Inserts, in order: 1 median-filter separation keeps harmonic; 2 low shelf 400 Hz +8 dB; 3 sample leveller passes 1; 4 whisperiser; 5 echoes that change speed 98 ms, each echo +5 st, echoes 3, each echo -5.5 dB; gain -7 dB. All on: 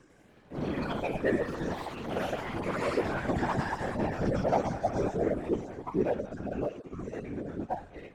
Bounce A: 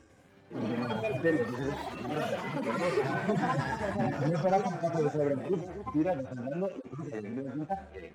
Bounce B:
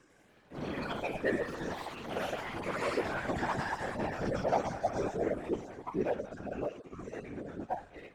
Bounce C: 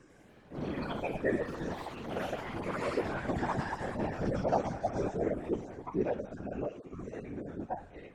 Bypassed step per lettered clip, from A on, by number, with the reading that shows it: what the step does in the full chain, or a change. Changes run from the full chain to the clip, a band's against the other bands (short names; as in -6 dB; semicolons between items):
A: 4, crest factor change -2.0 dB; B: 2, 125 Hz band -5.5 dB; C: 3, loudness change -3.5 LU